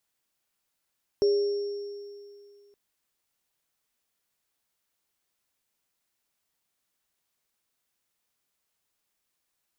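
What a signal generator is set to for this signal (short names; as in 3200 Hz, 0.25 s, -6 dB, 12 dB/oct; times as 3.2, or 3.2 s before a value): sine partials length 1.52 s, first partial 406 Hz, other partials 566/5490 Hz, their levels -18/-18 dB, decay 2.36 s, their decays 1.09/2.38 s, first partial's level -18 dB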